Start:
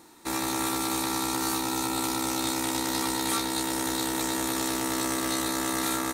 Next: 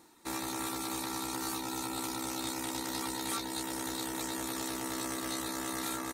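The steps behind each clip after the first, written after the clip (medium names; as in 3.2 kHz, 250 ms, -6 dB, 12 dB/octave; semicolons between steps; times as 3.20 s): reverb removal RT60 0.56 s; trim -6.5 dB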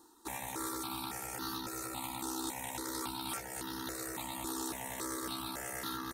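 stepped phaser 3.6 Hz 600–2300 Hz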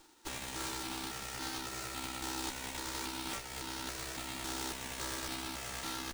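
formants flattened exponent 0.3; sliding maximum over 3 samples; trim +1 dB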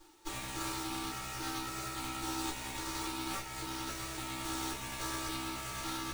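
reverberation RT60 0.25 s, pre-delay 3 ms, DRR -4.5 dB; trim -6.5 dB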